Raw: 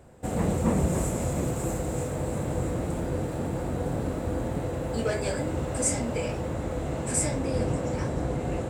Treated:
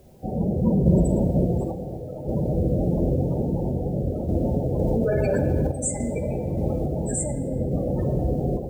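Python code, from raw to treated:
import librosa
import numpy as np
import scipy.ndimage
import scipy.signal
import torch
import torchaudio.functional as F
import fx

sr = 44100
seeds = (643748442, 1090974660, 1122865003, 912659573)

p1 = fx.spec_gate(x, sr, threshold_db=-15, keep='strong')
p2 = fx.tilt_eq(p1, sr, slope=3.5, at=(1.63, 2.24), fade=0.02)
p3 = fx.rider(p2, sr, range_db=5, speed_s=2.0)
p4 = p2 + (p3 * librosa.db_to_amplitude(0.0))
p5 = fx.lowpass(p4, sr, hz=2200.0, slope=6, at=(3.39, 4.11))
p6 = fx.room_shoebox(p5, sr, seeds[0], volume_m3=3200.0, walls='mixed', distance_m=1.2)
p7 = fx.quant_dither(p6, sr, seeds[1], bits=10, dither='triangular')
p8 = fx.tremolo_random(p7, sr, seeds[2], hz=3.5, depth_pct=55)
y = fx.env_flatten(p8, sr, amount_pct=100, at=(4.79, 5.67))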